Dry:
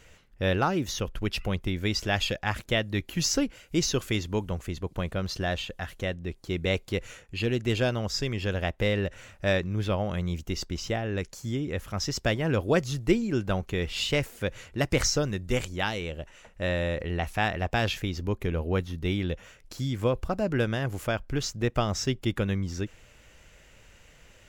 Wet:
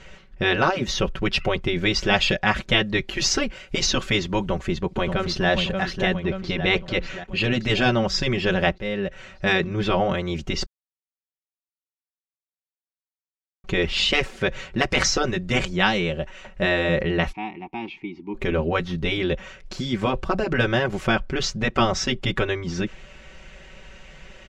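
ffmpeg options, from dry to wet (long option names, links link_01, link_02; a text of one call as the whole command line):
ffmpeg -i in.wav -filter_complex "[0:a]asplit=2[link_01][link_02];[link_02]afade=type=in:start_time=4.38:duration=0.01,afade=type=out:start_time=5.49:duration=0.01,aecho=0:1:580|1160|1740|2320|2900|3480|4060|4640:0.398107|0.238864|0.143319|0.0859911|0.0515947|0.0309568|0.0185741|0.0111445[link_03];[link_01][link_03]amix=inputs=2:normalize=0,asettb=1/sr,asplit=3[link_04][link_05][link_06];[link_04]atrim=end=6.244[link_07];[link_05]atrim=start=6.24:end=7.25,asetpts=PTS-STARTPTS,afade=type=in:duration=0.004:curve=qsin,afade=type=out:start_time=1.006:duration=0.004:curve=qsin,lowpass=5600[link_08];[link_06]atrim=start=7.246[link_09];[link_07][link_08]acrossfade=duration=0.004:curve1=hsin:curve2=qsin[link_10];[link_10][link_09]acrossfade=duration=0.004:curve1=qsin:curve2=hsin,asplit=3[link_11][link_12][link_13];[link_11]afade=type=out:start_time=17.31:duration=0.02[link_14];[link_12]asplit=3[link_15][link_16][link_17];[link_15]bandpass=frequency=300:width_type=q:width=8,volume=0dB[link_18];[link_16]bandpass=frequency=870:width_type=q:width=8,volume=-6dB[link_19];[link_17]bandpass=frequency=2240:width_type=q:width=8,volume=-9dB[link_20];[link_18][link_19][link_20]amix=inputs=3:normalize=0,afade=type=in:start_time=17.31:duration=0.02,afade=type=out:start_time=18.34:duration=0.02[link_21];[link_13]afade=type=in:start_time=18.34:duration=0.02[link_22];[link_14][link_21][link_22]amix=inputs=3:normalize=0,asplit=4[link_23][link_24][link_25][link_26];[link_23]atrim=end=8.78,asetpts=PTS-STARTPTS,afade=type=out:start_time=8.776:duration=0.004:curve=hsin:silence=0.149624[link_27];[link_24]atrim=start=8.78:end=10.66,asetpts=PTS-STARTPTS,afade=type=in:duration=0.88:silence=0.149624,afade=type=out:start_time=1.876:duration=0.004:curve=hsin[link_28];[link_25]atrim=start=10.66:end=13.64,asetpts=PTS-STARTPTS,volume=0[link_29];[link_26]atrim=start=13.64,asetpts=PTS-STARTPTS,afade=type=in:duration=0.004:curve=hsin[link_30];[link_27][link_28][link_29][link_30]concat=n=4:v=0:a=1,lowpass=4500,aecho=1:1:5.3:0.78,afftfilt=real='re*lt(hypot(re,im),0.355)':imag='im*lt(hypot(re,im),0.355)':win_size=1024:overlap=0.75,volume=8.5dB" out.wav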